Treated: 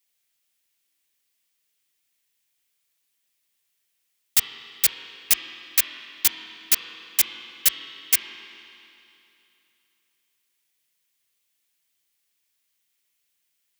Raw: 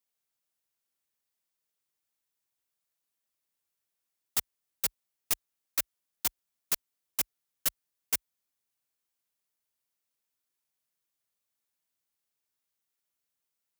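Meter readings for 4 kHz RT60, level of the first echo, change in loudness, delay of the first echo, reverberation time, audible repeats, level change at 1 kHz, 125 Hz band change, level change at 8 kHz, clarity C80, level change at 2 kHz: 2.9 s, no echo audible, +10.5 dB, no echo audible, 2.9 s, no echo audible, +4.0 dB, can't be measured, +10.5 dB, 6.5 dB, +12.0 dB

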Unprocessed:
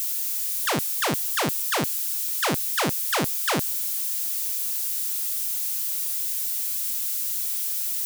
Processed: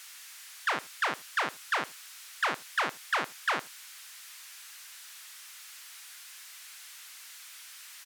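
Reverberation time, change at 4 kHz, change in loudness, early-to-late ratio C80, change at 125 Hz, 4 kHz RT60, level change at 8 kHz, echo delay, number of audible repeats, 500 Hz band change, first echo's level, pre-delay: no reverb audible, −8.5 dB, −10.5 dB, no reverb audible, −21.5 dB, no reverb audible, −17.0 dB, 79 ms, 1, −10.0 dB, −22.0 dB, no reverb audible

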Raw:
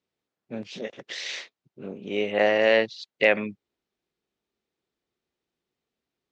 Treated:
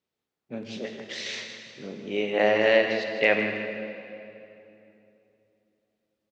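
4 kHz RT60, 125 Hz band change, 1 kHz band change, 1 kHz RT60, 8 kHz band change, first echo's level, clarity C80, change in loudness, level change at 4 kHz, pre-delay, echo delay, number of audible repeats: 2.1 s, +1.0 dB, 0.0 dB, 2.7 s, can't be measured, −10.5 dB, 5.0 dB, −1.5 dB, −0.5 dB, 8 ms, 159 ms, 2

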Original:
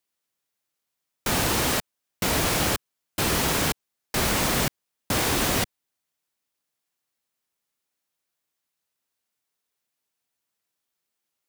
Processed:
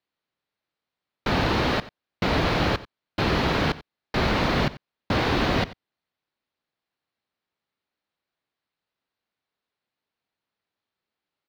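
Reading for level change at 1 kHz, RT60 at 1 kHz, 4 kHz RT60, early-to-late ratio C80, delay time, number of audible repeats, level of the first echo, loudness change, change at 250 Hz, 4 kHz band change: +2.0 dB, no reverb audible, no reverb audible, no reverb audible, 90 ms, 1, −18.0 dB, −0.5 dB, +3.0 dB, −2.0 dB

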